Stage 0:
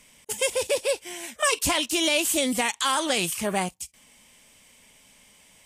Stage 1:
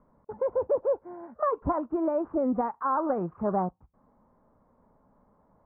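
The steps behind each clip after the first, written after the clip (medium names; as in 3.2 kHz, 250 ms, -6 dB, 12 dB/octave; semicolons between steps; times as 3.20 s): steep low-pass 1.3 kHz 48 dB/octave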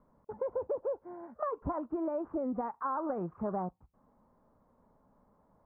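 compression, threshold -27 dBFS, peak gain reduction 6.5 dB; trim -3.5 dB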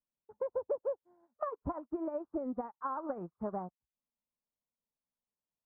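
upward expansion 2.5:1, over -54 dBFS; trim +1 dB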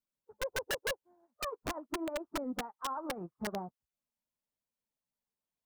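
coarse spectral quantiser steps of 15 dB; integer overflow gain 29 dB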